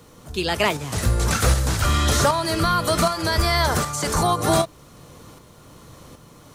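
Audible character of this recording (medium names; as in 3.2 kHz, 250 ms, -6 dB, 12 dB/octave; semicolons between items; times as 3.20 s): tremolo saw up 1.3 Hz, depth 50%; a quantiser's noise floor 12-bit, dither triangular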